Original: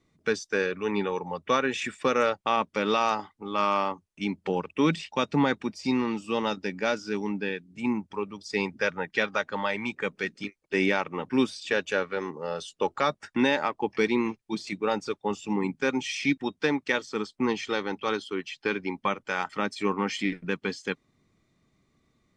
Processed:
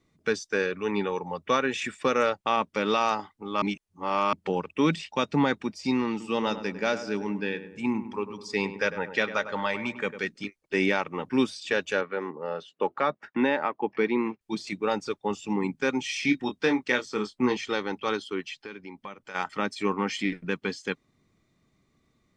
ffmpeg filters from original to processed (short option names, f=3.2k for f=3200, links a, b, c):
-filter_complex "[0:a]asettb=1/sr,asplit=3[a][b][c];[a]atrim=end=6.104[d];[b]atrim=start=6.1:end=10.2,asetpts=PTS-STARTPTS,afade=t=in:d=0.004:c=qsin,afade=t=out:st=4.096:d=0.004:c=qsin,asplit=2[e][f];[f]adelay=101,lowpass=f=1.7k:p=1,volume=-11dB,asplit=2[g][h];[h]adelay=101,lowpass=f=1.7k:p=1,volume=0.52,asplit=2[i][j];[j]adelay=101,lowpass=f=1.7k:p=1,volume=0.52,asplit=2[k][l];[l]adelay=101,lowpass=f=1.7k:p=1,volume=0.52,asplit=2[m][n];[n]adelay=101,lowpass=f=1.7k:p=1,volume=0.52,asplit=2[o][p];[p]adelay=101,lowpass=f=1.7k:p=1,volume=0.52[q];[e][g][i][k][m][o][q]amix=inputs=7:normalize=0,atrim=end_sample=180810[r];[c]atrim=start=10.196[s];[d][r]acrossfade=d=0.004:c1=hsin:c2=qsin[t];[t][s]acrossfade=d=0.004:c1=qsin:c2=hsin,asettb=1/sr,asplit=3[u][v][w];[u]atrim=end=12.014[x];[v]atrim=start=12.01:end=14.41,asetpts=PTS-STARTPTS,afade=t=in:d=0.004:c=qsin,afade=t=out:st=2.396:d=0.004:c=qsin,highpass=170,lowpass=2.4k[y];[w]atrim=start=14.406[z];[x][y]acrossfade=d=0.004:c1=hsin:c2=qsin[aa];[aa][z]acrossfade=d=0.004:c1=qsin:c2=hsin,asettb=1/sr,asplit=3[ab][ac][ad];[ab]atrim=end=16.064[ae];[ac]atrim=start=16.06:end=17.57,asetpts=PTS-STARTPTS,afade=t=in:d=0.004:c=qsin,afade=t=out:st=1.506:d=0.004:c=qsin,asplit=2[af][ag];[ag]adelay=24,volume=-6.5dB[ah];[af][ah]amix=inputs=2:normalize=0,atrim=end_sample=66591[ai];[ad]atrim=start=17.566[aj];[ae][ai]acrossfade=d=0.004:c1=hsin:c2=qsin[ak];[ak][aj]acrossfade=d=0.004:c1=qsin:c2=hsin,asplit=3[al][am][an];[al]afade=t=out:st=18.61:d=0.02[ao];[am]acompressor=threshold=-46dB:ratio=2:attack=3.2:release=140:knee=1:detection=peak,afade=t=in:st=18.61:d=0.02,afade=t=out:st=19.34:d=0.02[ap];[an]afade=t=in:st=19.34:d=0.02[aq];[ao][ap][aq]amix=inputs=3:normalize=0,asplit=3[ar][as][at];[ar]atrim=end=3.622[au];[as]atrim=start=3.618:end=4.332,asetpts=PTS-STARTPTS,areverse[av];[at]atrim=start=4.328[aw];[au][av]acrossfade=d=0.004:c1=hsin:c2=hsin[ax];[ax][aw]acrossfade=d=0.004:c1=hsin:c2=hsin"